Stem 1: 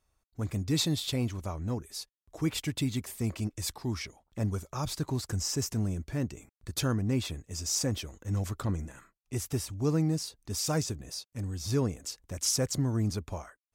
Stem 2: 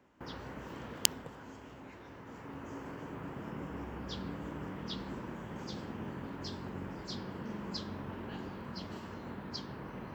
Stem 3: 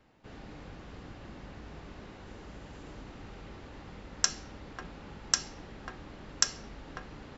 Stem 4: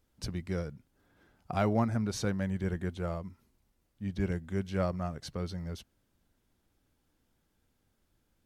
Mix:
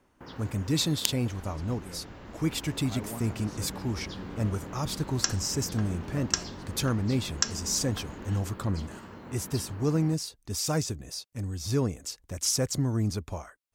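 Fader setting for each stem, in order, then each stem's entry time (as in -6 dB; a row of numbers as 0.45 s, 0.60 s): +1.5 dB, -0.5 dB, -0.5 dB, -13.0 dB; 0.00 s, 0.00 s, 1.00 s, 1.35 s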